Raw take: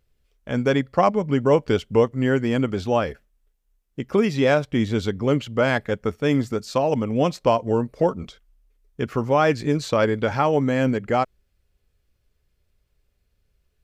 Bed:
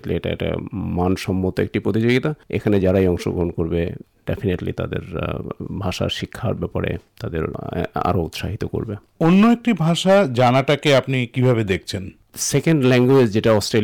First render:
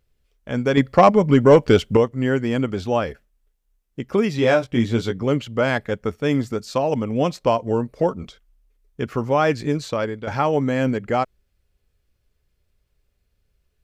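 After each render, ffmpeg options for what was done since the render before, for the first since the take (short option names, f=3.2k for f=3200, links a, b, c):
-filter_complex "[0:a]asettb=1/sr,asplit=3[a][b][c];[a]atrim=end=0.774[d];[b]atrim=start=0.77:end=1.97,asetpts=PTS-STARTPTS,afade=t=in:d=0.004:c=qsin,afade=t=out:st=1.196:d=0.004:c=qsin,acontrast=89[e];[c]atrim=start=1.966[f];[d][e]acrossfade=d=0.004:c1=hsin:c2=qsin[g];[g][f]acrossfade=d=0.004:c1=qsin:c2=hsin,asettb=1/sr,asplit=3[h][i][j];[h]atrim=end=4.374[k];[i]atrim=start=4.37:end=5.23,asetpts=PTS-STARTPTS,afade=t=in:d=0.004:c=qsin,afade=t=out:st=0.856:d=0.004:c=qsin,asplit=2[l][m];[m]adelay=17,volume=-5.5dB[n];[l][n]amix=inputs=2:normalize=0,atrim=end_sample=37926[o];[j]atrim=start=5.226[p];[k][o]acrossfade=d=0.004:c1=hsin:c2=qsin[q];[q][p]acrossfade=d=0.004:c1=qsin:c2=hsin,asplit=2[r][s];[r]atrim=end=10.27,asetpts=PTS-STARTPTS,afade=t=out:st=9.66:d=0.61:silence=0.316228[t];[s]atrim=start=10.27,asetpts=PTS-STARTPTS,afade=t=in:d=0.004:c=hsin:silence=0.316228[u];[t][u]concat=n=2:v=0:a=1"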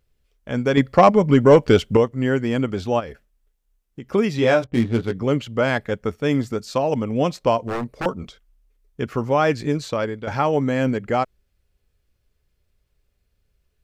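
-filter_complex "[0:a]asplit=3[a][b][c];[a]afade=t=out:st=2.99:d=0.02[d];[b]acompressor=threshold=-31dB:ratio=3:attack=3.2:release=140:knee=1:detection=peak,afade=t=in:st=2.99:d=0.02,afade=t=out:st=4.07:d=0.02[e];[c]afade=t=in:st=4.07:d=0.02[f];[d][e][f]amix=inputs=3:normalize=0,asettb=1/sr,asplit=3[g][h][i];[g]atrim=end=4.644[j];[h]atrim=start=4.64:end=5.13,asetpts=PTS-STARTPTS,afade=t=in:d=0.004:c=qsin,afade=t=out:st=0.486:d=0.004:c=qsin,adynamicsmooth=sensitivity=3.5:basefreq=670[k];[i]atrim=start=5.126[l];[j][k]acrossfade=d=0.004:c1=hsin:c2=qsin[m];[m][l]acrossfade=d=0.004:c1=qsin:c2=hsin,asettb=1/sr,asplit=3[n][o][p];[n]atrim=end=7.654[q];[o]atrim=start=7.65:end=8.06,asetpts=PTS-STARTPTS,afade=t=in:d=0.004:c=qsin,afade=t=out:st=0.406:d=0.004:c=qsin,aeval=exprs='0.106*(abs(mod(val(0)/0.106+3,4)-2)-1)':c=same[r];[p]atrim=start=8.056[s];[q][r]acrossfade=d=0.004:c1=hsin:c2=qsin[t];[t][s]acrossfade=d=0.004:c1=qsin:c2=hsin"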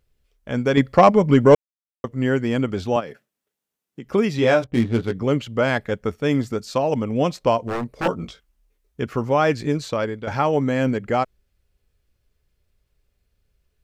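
-filter_complex "[0:a]asettb=1/sr,asplit=3[a][b][c];[a]atrim=end=2.964[d];[b]atrim=start=2.96:end=4.05,asetpts=PTS-STARTPTS,afade=t=in:d=0.004:c=qsin,afade=t=out:st=1.086:d=0.004:c=qsin,highpass=f=130:w=0.5412,highpass=f=130:w=1.3066[e];[c]atrim=start=4.046[f];[d][e]acrossfade=d=0.004:c1=hsin:c2=qsin[g];[g][f]acrossfade=d=0.004:c1=qsin:c2=hsin,asettb=1/sr,asplit=3[h][i][j];[h]atrim=end=7.974[k];[i]atrim=start=7.97:end=9.01,asetpts=PTS-STARTPTS,afade=t=in:d=0.004:c=qsin,afade=t=out:st=1.036:d=0.004:c=qsin,asplit=2[l][m];[m]adelay=18,volume=-2dB[n];[l][n]amix=inputs=2:normalize=0,atrim=end_sample=45864[o];[j]atrim=start=9.006[p];[k][o]acrossfade=d=0.004:c1=hsin:c2=qsin[q];[q][p]acrossfade=d=0.004:c1=qsin:c2=hsin,asplit=3[r][s][t];[r]atrim=end=1.55,asetpts=PTS-STARTPTS,afade=t=out:st=1.546:d=0.004:c=hsin[u];[s]atrim=start=1.55:end=2.04,asetpts=PTS-STARTPTS,volume=0[v];[t]atrim=start=2.04,asetpts=PTS-STARTPTS,afade=t=in:d=0.004:c=hsin[w];[u][v][w]concat=n=3:v=0:a=1"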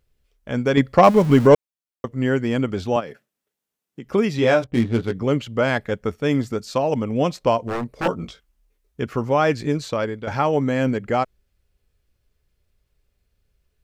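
-filter_complex "[0:a]asettb=1/sr,asplit=3[a][b][c];[a]atrim=end=1.044[d];[b]atrim=start=1.04:end=1.47,asetpts=PTS-STARTPTS,afade=t=in:d=0.004:c=qsin,afade=t=out:st=0.426:d=0.004:c=qsin,aeval=exprs='val(0)+0.5*0.0447*sgn(val(0))':c=same[e];[c]atrim=start=1.466[f];[d][e]acrossfade=d=0.004:c1=hsin:c2=qsin[g];[g][f]acrossfade=d=0.004:c1=qsin:c2=hsin"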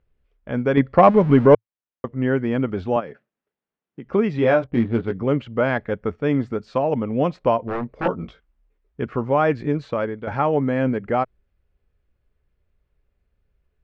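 -af "lowpass=2.1k,equalizer=f=110:t=o:w=0.25:g=-3"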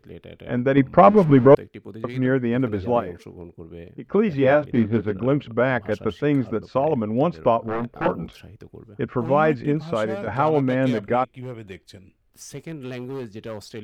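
-filter_complex "[1:a]volume=-18.5dB[a];[0:a][a]amix=inputs=2:normalize=0"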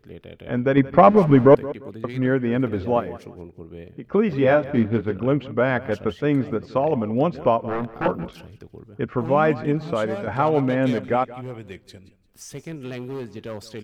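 -af "aecho=1:1:174|348:0.126|0.034"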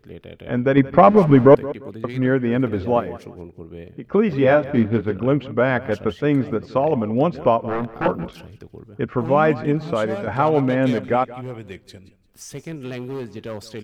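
-af "volume=2dB,alimiter=limit=-2dB:level=0:latency=1"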